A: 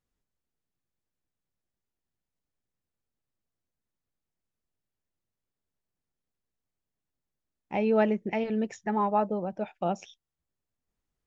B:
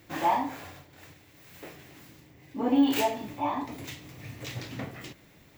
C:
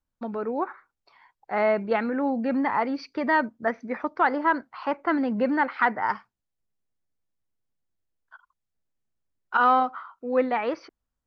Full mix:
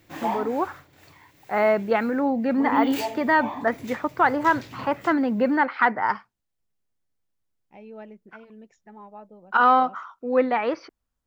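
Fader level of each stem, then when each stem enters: −18.0, −2.5, +2.5 decibels; 0.00, 0.00, 0.00 seconds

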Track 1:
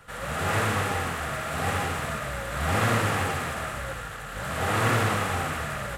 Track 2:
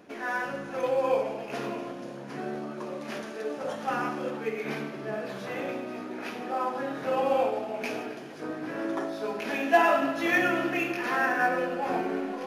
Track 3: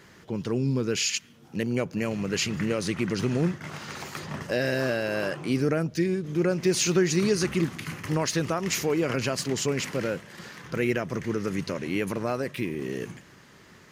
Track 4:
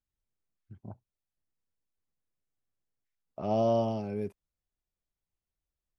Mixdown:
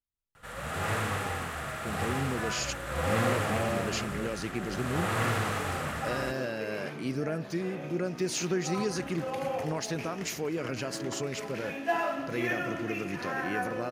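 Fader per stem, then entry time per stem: −5.5, −8.0, −7.5, −7.0 decibels; 0.35, 2.15, 1.55, 0.00 seconds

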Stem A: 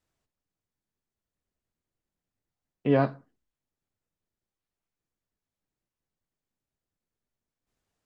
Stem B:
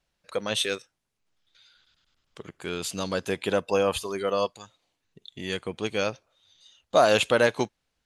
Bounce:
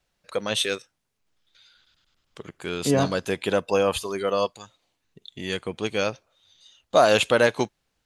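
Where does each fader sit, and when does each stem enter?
+1.0, +2.0 decibels; 0.00, 0.00 seconds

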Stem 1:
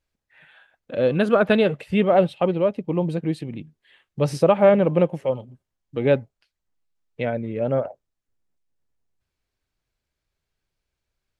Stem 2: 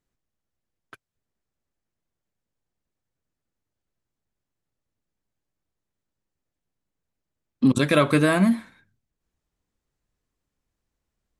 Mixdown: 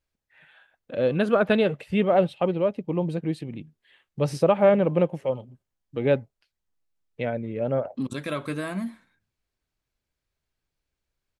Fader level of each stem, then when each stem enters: −3.0, −11.5 decibels; 0.00, 0.35 seconds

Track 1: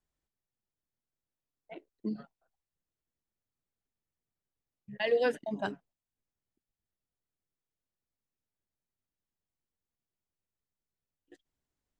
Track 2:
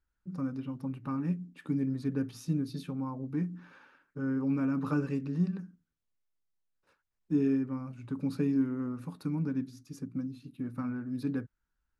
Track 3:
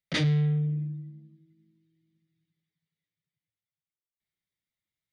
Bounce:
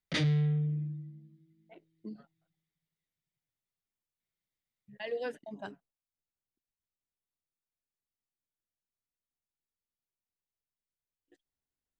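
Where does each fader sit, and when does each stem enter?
−8.5 dB, muted, −3.5 dB; 0.00 s, muted, 0.00 s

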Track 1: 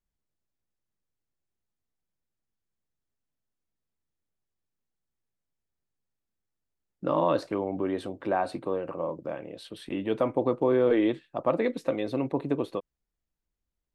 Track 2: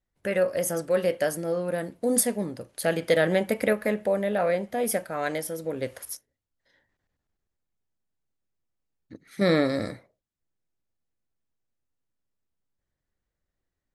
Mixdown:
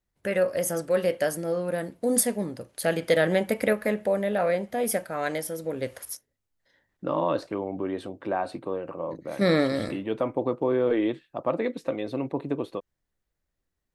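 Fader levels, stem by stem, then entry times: −1.0, 0.0 decibels; 0.00, 0.00 seconds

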